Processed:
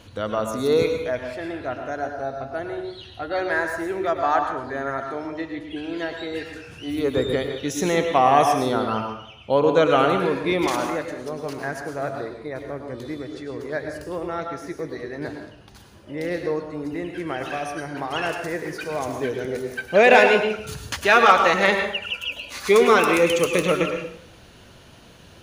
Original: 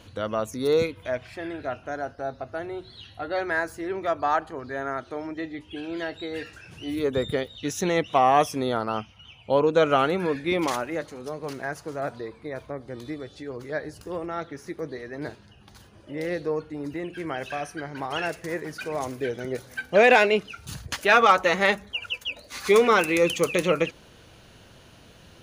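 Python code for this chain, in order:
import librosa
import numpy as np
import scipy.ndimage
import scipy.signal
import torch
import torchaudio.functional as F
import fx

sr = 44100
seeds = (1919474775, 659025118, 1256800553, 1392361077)

y = fx.rev_plate(x, sr, seeds[0], rt60_s=0.69, hf_ratio=0.75, predelay_ms=90, drr_db=4.5)
y = y * librosa.db_to_amplitude(2.0)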